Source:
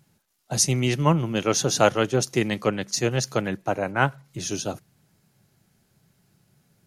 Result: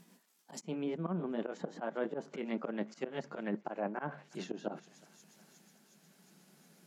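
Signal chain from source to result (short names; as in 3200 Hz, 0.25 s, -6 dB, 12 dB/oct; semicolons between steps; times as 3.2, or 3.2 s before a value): gliding pitch shift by +2.5 st ending unshifted; auto swell 0.126 s; reverse; compressor 4:1, threshold -37 dBFS, peak gain reduction 16.5 dB; reverse; brick-wall FIR high-pass 160 Hz; on a send: thinning echo 0.362 s, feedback 70%, high-pass 590 Hz, level -23.5 dB; on the sum: treble ducked by the level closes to 1200 Hz, closed at -36 dBFS; gain +3.5 dB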